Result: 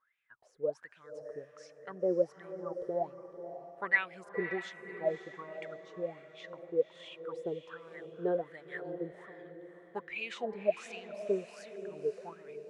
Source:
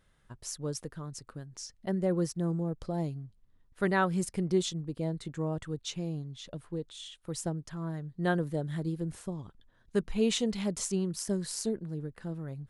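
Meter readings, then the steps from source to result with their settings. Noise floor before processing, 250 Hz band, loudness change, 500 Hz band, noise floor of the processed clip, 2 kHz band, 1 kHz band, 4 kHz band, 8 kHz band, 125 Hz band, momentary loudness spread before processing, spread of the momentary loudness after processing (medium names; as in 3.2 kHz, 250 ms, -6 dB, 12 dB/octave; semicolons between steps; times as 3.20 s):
-67 dBFS, -11.5 dB, -3.5 dB, +0.5 dB, -63 dBFS, +3.5 dB, -4.5 dB, -11.5 dB, under -20 dB, -18.5 dB, 14 LU, 15 LU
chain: level rider gain up to 9 dB; wah-wah 1.3 Hz 430–2500 Hz, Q 15; echo that smears into a reverb 551 ms, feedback 41%, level -10 dB; trim +7 dB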